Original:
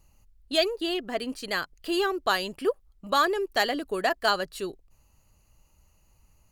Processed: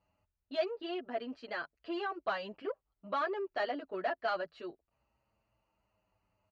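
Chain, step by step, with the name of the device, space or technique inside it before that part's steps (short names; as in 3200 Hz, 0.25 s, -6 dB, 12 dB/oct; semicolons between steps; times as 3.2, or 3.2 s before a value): barber-pole flanger into a guitar amplifier (endless flanger 7.6 ms -0.31 Hz; soft clip -23 dBFS, distortion -14 dB; speaker cabinet 98–3900 Hz, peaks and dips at 140 Hz -8 dB, 630 Hz +8 dB, 920 Hz +3 dB, 1400 Hz +4 dB, 3600 Hz -6 dB); gain -7 dB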